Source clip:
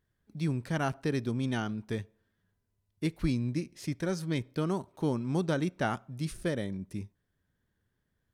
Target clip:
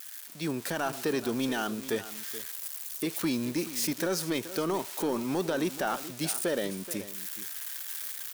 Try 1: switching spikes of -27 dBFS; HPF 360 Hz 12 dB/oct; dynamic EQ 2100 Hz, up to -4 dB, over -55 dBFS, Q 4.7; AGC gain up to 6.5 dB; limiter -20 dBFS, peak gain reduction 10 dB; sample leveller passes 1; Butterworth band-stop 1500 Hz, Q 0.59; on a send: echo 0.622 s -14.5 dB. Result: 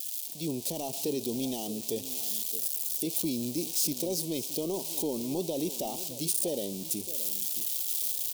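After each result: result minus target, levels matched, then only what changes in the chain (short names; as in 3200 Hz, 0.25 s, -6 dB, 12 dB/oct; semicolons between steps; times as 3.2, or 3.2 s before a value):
2000 Hz band -17.0 dB; echo 0.194 s late; switching spikes: distortion +8 dB
remove: Butterworth band-stop 1500 Hz, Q 0.59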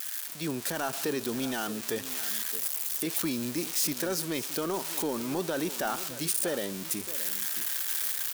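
echo 0.194 s late; switching spikes: distortion +8 dB
change: echo 0.428 s -14.5 dB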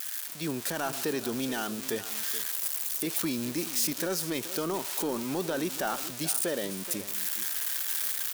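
switching spikes: distortion +8 dB
change: switching spikes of -35.5 dBFS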